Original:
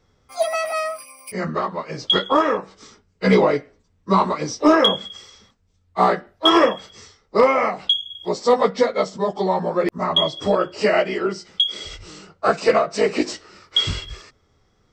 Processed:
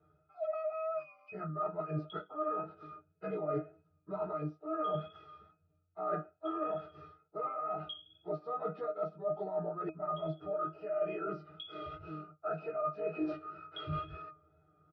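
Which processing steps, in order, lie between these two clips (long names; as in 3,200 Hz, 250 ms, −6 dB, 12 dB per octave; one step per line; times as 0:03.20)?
in parallel at +3 dB: brickwall limiter −14 dBFS, peak gain reduction 8.5 dB
on the sum: loudspeaker in its box 120–3,900 Hz, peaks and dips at 180 Hz −9 dB, 310 Hz −7 dB, 470 Hz +7 dB, 810 Hz +4 dB, 1,400 Hz +9 dB, 2,800 Hz −6 dB
resonances in every octave D#, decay 0.16 s
reversed playback
downward compressor 12 to 1, threshold −34 dBFS, peak gain reduction 24 dB
reversed playback
tape wow and flutter 27 cents
comb filter 6.7 ms, depth 42%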